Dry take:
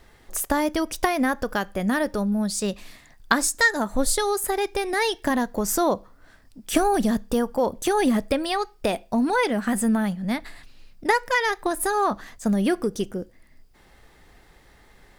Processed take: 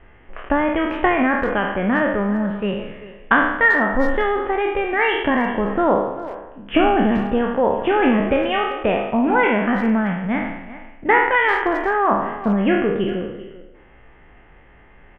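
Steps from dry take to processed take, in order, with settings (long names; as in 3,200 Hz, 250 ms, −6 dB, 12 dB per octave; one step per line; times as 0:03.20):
peak hold with a decay on every bin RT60 0.91 s
Butterworth low-pass 3,100 Hz 96 dB per octave
far-end echo of a speakerphone 390 ms, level −14 dB
level +2.5 dB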